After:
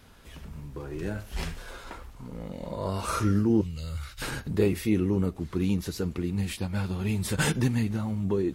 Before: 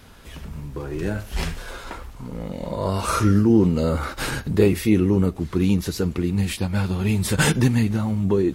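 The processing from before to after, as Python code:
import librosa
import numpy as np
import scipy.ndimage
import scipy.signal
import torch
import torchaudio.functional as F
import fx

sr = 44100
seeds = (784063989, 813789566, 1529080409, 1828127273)

y = fx.curve_eq(x, sr, hz=(130.0, 220.0, 880.0, 2800.0), db=(0, -22, -18, 0), at=(3.61, 4.22))
y = y * 10.0 ** (-7.0 / 20.0)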